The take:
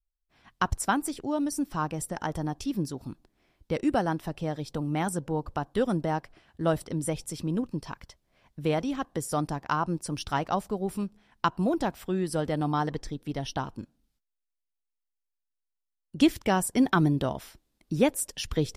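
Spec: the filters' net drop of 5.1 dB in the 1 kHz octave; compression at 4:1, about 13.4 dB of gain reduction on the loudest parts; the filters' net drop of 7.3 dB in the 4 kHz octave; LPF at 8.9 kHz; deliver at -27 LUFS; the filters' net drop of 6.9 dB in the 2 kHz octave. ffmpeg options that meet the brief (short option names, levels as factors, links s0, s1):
-af "lowpass=8900,equalizer=f=1000:t=o:g=-5,equalizer=f=2000:t=o:g=-6,equalizer=f=4000:t=o:g=-7.5,acompressor=threshold=0.02:ratio=4,volume=3.98"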